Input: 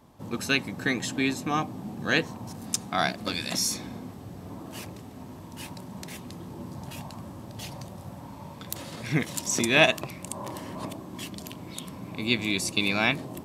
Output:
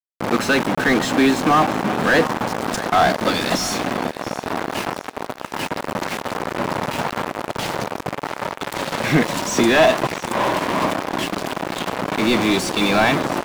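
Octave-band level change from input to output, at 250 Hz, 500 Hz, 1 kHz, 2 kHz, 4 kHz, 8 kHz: +11.0, +13.0, +15.0, +7.5, +5.5, +3.5 dB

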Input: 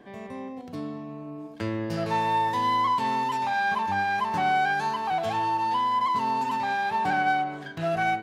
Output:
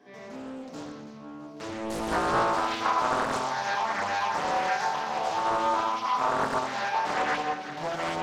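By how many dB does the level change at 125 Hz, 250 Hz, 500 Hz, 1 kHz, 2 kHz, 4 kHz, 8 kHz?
-7.0 dB, -2.5 dB, +2.5 dB, -3.0 dB, -2.5 dB, +1.0 dB, n/a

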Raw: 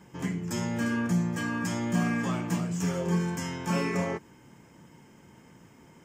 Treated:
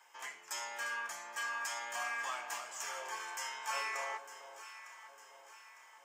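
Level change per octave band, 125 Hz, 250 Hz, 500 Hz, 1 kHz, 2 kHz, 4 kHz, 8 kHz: under -40 dB, -40.0 dB, -15.0 dB, -3.0 dB, -2.5 dB, -2.0 dB, -2.0 dB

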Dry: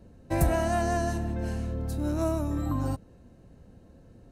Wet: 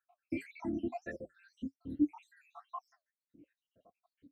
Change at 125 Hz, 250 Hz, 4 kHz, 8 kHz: -25.0 dB, -6.5 dB, under -15 dB, under -25 dB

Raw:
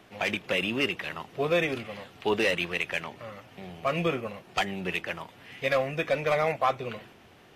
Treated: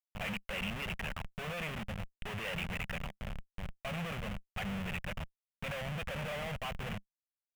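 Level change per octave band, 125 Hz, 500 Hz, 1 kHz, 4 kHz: -2.5, -15.5, -12.5, -9.0 dB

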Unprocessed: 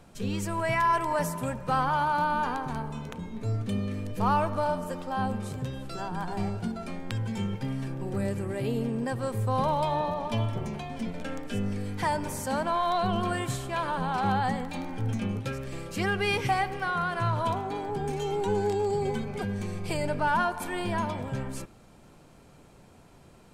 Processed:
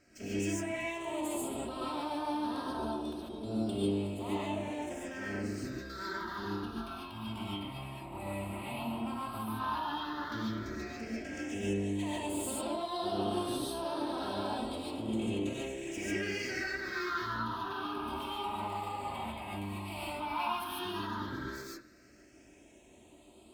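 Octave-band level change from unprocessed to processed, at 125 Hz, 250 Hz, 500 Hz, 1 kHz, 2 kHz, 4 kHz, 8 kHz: -12.0, -3.5, -7.5, -9.5, -6.5, -2.0, -2.0 dB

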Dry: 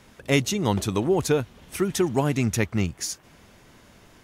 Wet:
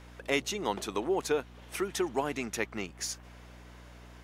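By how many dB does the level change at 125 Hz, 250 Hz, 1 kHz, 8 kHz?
-20.0, -11.5, -4.0, -7.0 dB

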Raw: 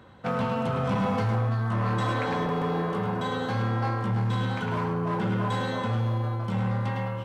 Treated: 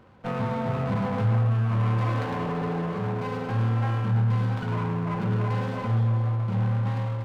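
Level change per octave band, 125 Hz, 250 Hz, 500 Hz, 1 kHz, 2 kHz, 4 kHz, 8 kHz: +4.0 dB, -0.5 dB, -2.0 dB, -2.5 dB, -3.5 dB, -5.5 dB, n/a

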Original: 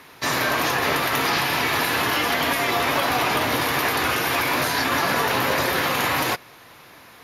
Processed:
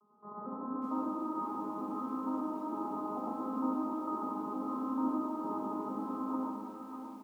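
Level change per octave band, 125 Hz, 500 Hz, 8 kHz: under -20 dB, -17.0 dB, under -35 dB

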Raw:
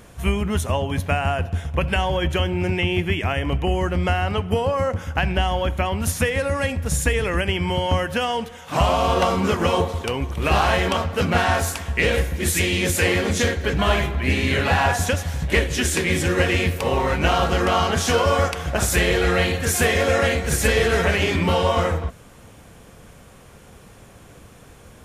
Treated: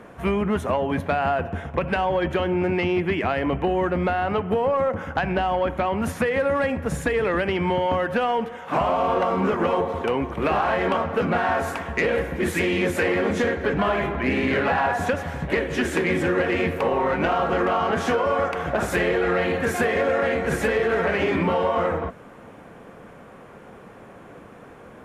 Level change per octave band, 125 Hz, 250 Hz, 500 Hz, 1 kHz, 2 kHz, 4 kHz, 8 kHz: -8.0, 0.0, +0.5, -0.5, -2.5, -10.0, -14.5 dB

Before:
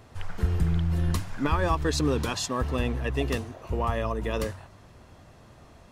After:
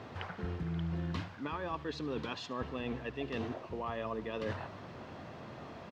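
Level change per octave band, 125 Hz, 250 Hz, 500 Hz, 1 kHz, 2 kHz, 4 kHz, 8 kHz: -12.5, -8.5, -9.0, -9.5, -8.5, -10.5, -23.0 dB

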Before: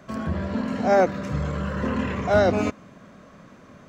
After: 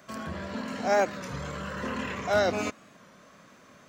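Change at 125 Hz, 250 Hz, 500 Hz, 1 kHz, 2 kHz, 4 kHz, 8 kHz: -11.5 dB, -9.5 dB, -6.0 dB, -4.5 dB, -2.0 dB, +1.0 dB, n/a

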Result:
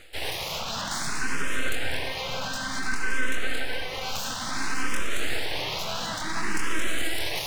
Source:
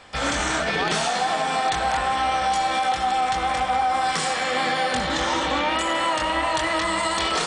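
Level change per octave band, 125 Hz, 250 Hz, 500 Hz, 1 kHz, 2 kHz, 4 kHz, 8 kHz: -3.0, -7.0, -10.0, -15.0, -4.0, -4.5, -3.0 dB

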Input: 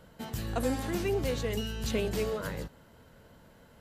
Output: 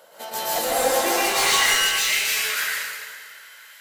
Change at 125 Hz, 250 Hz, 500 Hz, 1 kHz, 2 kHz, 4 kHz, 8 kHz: -14.0, -2.0, +5.5, +17.5, +20.5, +20.0, +22.0 dB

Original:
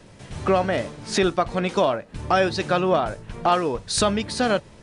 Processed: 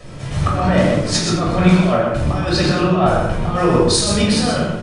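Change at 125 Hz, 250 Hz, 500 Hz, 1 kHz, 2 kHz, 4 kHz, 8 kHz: +14.0, +10.0, +4.0, +2.5, +4.5, +8.0, +8.5 dB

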